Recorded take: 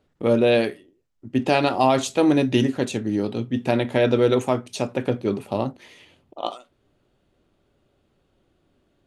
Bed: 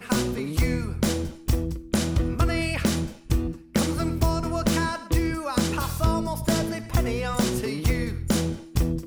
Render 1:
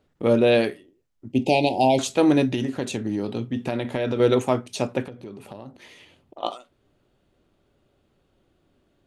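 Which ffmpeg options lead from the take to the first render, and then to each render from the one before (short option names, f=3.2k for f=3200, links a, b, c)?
-filter_complex "[0:a]asettb=1/sr,asplit=3[a][b][c];[a]atrim=end=1.324[d];[b]atrim=start=1.32:end=1.99,asetpts=PTS-STARTPTS,afade=t=in:d=0.004:c=qsin,afade=t=out:st=0.666:d=0.004:c=qsin,asuperstop=centerf=1400:order=12:qfactor=1.1[e];[c]atrim=start=1.986[f];[d][e]acrossfade=d=0.004:c1=hsin:c2=qsin[g];[g][f]acrossfade=d=0.004:c1=qsin:c2=hsin,asettb=1/sr,asplit=3[h][i][j];[h]atrim=end=2.534[k];[i]atrim=start=2.53:end=4.2,asetpts=PTS-STARTPTS,afade=t=in:d=0.004:c=qsin,afade=t=out:st=1.666:d=0.004:c=qsin,acompressor=threshold=-21dB:ratio=5:attack=3.2:release=140:knee=1:detection=peak[l];[j]atrim=start=4.196[m];[k][l]acrossfade=d=0.004:c1=hsin:c2=qsin[n];[n][m]acrossfade=d=0.004:c1=qsin:c2=hsin,asettb=1/sr,asplit=3[o][p][q];[o]atrim=end=5.044[r];[p]atrim=start=5.04:end=6.41,asetpts=PTS-STARTPTS,afade=t=in:d=0.004:c=qsin,afade=t=out:st=1.366:d=0.004:c=qsin,acompressor=threshold=-36dB:ratio=5:attack=3.2:release=140:knee=1:detection=peak[s];[q]atrim=start=6.406[t];[r][s]acrossfade=d=0.004:c1=hsin:c2=qsin[u];[u][t]acrossfade=d=0.004:c1=qsin:c2=hsin"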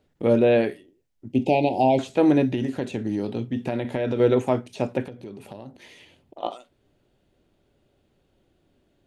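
-filter_complex "[0:a]acrossover=split=2600[a][b];[b]acompressor=threshold=-46dB:ratio=4:attack=1:release=60[c];[a][c]amix=inputs=2:normalize=0,equalizer=f=1.2k:t=o:w=0.43:g=-6"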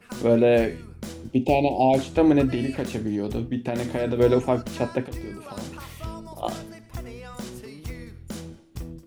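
-filter_complex "[1:a]volume=-12.5dB[a];[0:a][a]amix=inputs=2:normalize=0"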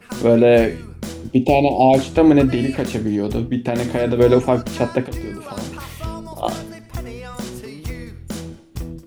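-af "volume=6.5dB,alimiter=limit=-3dB:level=0:latency=1"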